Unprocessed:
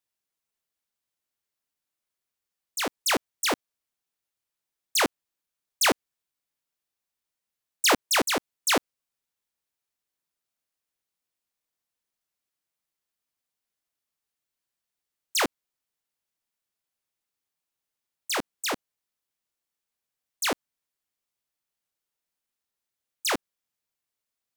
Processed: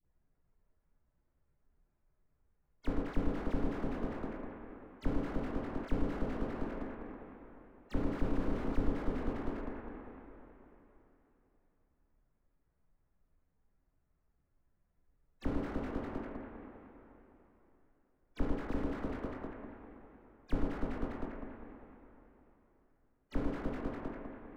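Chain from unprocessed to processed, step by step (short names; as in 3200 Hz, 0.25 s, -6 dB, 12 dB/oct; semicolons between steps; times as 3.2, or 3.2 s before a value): bin magnitudes rounded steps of 15 dB; inverse Chebyshev low-pass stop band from 10000 Hz, stop band 80 dB; low shelf 110 Hz +11 dB; echo with dull and thin repeats by turns 0.1 s, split 1300 Hz, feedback 66%, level -5 dB; two-slope reverb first 0.37 s, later 3.4 s, from -18 dB, DRR 6 dB; compressor 2:1, threshold -44 dBFS, peak gain reduction 15 dB; tilt -4 dB/oct; dispersion highs, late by 54 ms, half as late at 630 Hz; slew limiter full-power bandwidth 3.5 Hz; gain +6 dB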